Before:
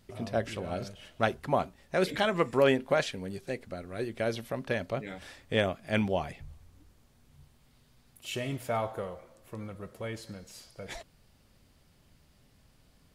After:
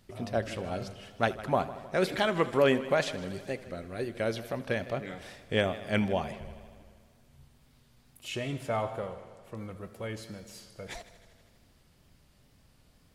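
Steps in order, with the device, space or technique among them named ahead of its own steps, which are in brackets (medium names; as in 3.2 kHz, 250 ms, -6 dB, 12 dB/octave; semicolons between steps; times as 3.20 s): multi-head tape echo (multi-head delay 79 ms, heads first and second, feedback 64%, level -19 dB; wow and flutter); 8.28–9.57 s: Bessel low-pass 8.5 kHz, order 2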